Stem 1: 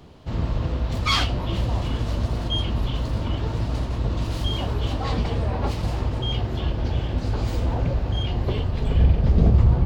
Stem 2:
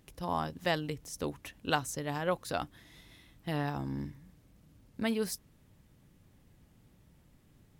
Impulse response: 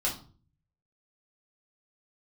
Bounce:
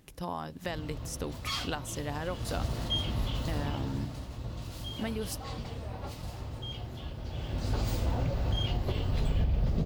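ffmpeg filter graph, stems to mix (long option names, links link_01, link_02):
-filter_complex "[0:a]aemphasis=mode=production:type=50kf,adelay=400,volume=1dB,afade=type=in:start_time=2.26:duration=0.42:silence=0.375837,afade=type=out:start_time=3.48:duration=0.63:silence=0.421697,afade=type=in:start_time=7.27:duration=0.57:silence=0.316228,asplit=2[link_01][link_02];[link_02]volume=-13dB[link_03];[1:a]acompressor=threshold=-35dB:ratio=6,volume=3dB[link_04];[2:a]atrim=start_sample=2205[link_05];[link_03][link_05]afir=irnorm=-1:irlink=0[link_06];[link_01][link_04][link_06]amix=inputs=3:normalize=0,alimiter=limit=-20dB:level=0:latency=1:release=232"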